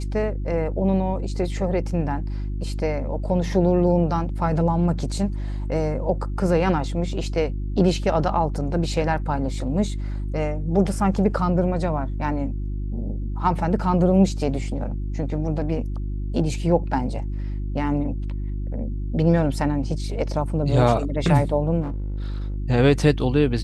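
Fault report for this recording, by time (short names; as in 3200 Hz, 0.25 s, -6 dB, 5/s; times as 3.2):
hum 50 Hz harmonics 7 -27 dBFS
21.81–22.56 clipped -24.5 dBFS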